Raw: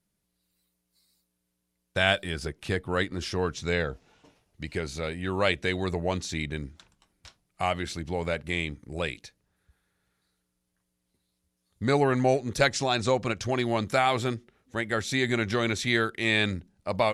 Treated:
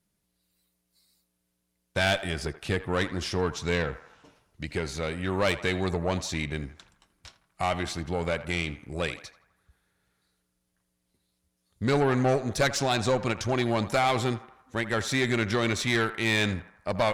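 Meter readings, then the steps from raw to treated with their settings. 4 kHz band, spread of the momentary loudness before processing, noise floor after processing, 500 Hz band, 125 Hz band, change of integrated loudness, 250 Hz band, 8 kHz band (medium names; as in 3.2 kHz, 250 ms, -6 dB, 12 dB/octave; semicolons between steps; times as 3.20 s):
-0.5 dB, 10 LU, -78 dBFS, 0.0 dB, +1.5 dB, 0.0 dB, +0.5 dB, +2.0 dB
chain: valve stage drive 20 dB, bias 0.4; band-passed feedback delay 82 ms, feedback 60%, band-pass 1.1 kHz, level -12.5 dB; trim +3 dB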